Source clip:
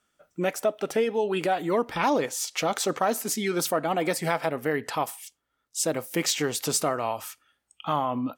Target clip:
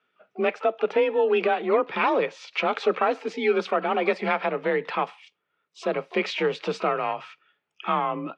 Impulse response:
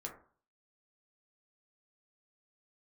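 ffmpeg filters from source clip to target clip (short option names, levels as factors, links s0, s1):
-filter_complex "[0:a]asplit=2[s0][s1];[s1]asetrate=88200,aresample=44100,atempo=0.5,volume=0.141[s2];[s0][s2]amix=inputs=2:normalize=0,highpass=120,equalizer=f=140:t=q:w=4:g=3,equalizer=f=260:t=q:w=4:g=-6,equalizer=f=390:t=q:w=4:g=8,equalizer=f=1200:t=q:w=4:g=4,equalizer=f=2400:t=q:w=4:g=7,lowpass=f=3600:w=0.5412,lowpass=f=3600:w=1.3066,afreqshift=34"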